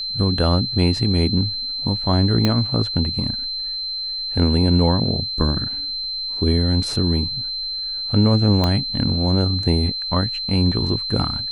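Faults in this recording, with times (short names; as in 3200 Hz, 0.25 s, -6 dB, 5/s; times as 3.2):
tone 4100 Hz -24 dBFS
2.45 pop -5 dBFS
8.64 pop -7 dBFS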